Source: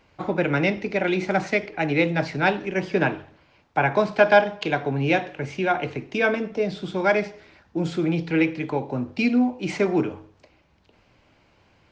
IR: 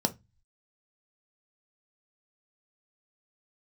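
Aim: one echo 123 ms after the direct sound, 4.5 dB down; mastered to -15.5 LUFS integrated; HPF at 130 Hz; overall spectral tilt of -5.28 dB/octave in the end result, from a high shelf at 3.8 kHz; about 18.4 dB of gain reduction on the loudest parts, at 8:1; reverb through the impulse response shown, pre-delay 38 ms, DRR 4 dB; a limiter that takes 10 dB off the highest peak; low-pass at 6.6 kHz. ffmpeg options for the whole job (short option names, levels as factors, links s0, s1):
-filter_complex "[0:a]highpass=130,lowpass=6600,highshelf=f=3800:g=-6,acompressor=threshold=0.0316:ratio=8,alimiter=level_in=1.58:limit=0.0631:level=0:latency=1,volume=0.631,aecho=1:1:123:0.596,asplit=2[s0][s1];[1:a]atrim=start_sample=2205,adelay=38[s2];[s1][s2]afir=irnorm=-1:irlink=0,volume=0.266[s3];[s0][s3]amix=inputs=2:normalize=0,volume=7.08"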